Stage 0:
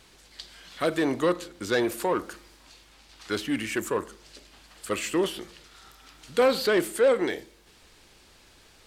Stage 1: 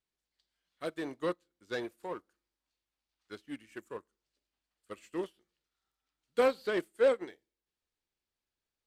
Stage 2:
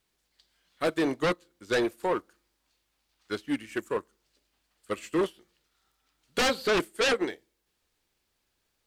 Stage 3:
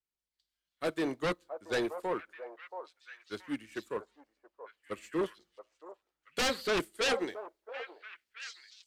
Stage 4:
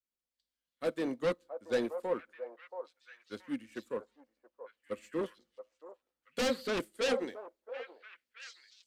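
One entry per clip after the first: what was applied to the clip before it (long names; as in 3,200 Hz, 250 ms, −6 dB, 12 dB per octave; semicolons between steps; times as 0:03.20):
expander for the loud parts 2.5 to 1, over −39 dBFS; level −4 dB
sine wavefolder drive 13 dB, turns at −17.5 dBFS; level −3 dB
echo through a band-pass that steps 677 ms, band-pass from 740 Hz, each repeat 1.4 octaves, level −3 dB; multiband upward and downward expander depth 40%; level −6.5 dB
hollow resonant body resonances 240/510 Hz, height 11 dB, ringing for 60 ms; level −5 dB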